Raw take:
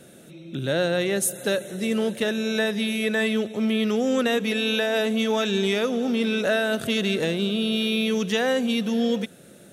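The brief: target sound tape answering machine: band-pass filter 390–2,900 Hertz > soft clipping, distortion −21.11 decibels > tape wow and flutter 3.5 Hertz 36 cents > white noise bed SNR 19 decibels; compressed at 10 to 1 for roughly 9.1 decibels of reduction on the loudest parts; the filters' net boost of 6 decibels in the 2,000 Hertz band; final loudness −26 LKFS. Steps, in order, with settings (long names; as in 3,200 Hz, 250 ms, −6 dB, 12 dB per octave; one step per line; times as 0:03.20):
parametric band 2,000 Hz +9 dB
downward compressor 10 to 1, threshold −25 dBFS
band-pass filter 390–2,900 Hz
soft clipping −22 dBFS
tape wow and flutter 3.5 Hz 36 cents
white noise bed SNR 19 dB
level +6.5 dB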